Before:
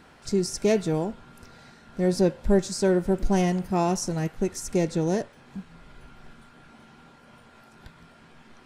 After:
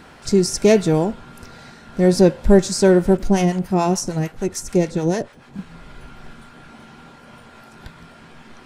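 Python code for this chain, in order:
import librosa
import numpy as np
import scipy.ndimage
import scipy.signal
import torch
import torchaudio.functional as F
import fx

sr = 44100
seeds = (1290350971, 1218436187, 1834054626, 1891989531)

y = fx.harmonic_tremolo(x, sr, hz=6.8, depth_pct=70, crossover_hz=680.0, at=(3.17, 5.59))
y = y * 10.0 ** (8.5 / 20.0)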